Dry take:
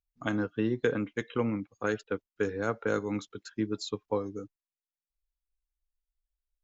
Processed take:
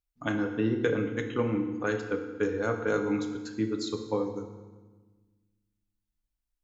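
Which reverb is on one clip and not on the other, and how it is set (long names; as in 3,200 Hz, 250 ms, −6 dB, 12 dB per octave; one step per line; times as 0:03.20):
feedback delay network reverb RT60 1.3 s, low-frequency decay 1.55×, high-frequency decay 0.85×, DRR 4.5 dB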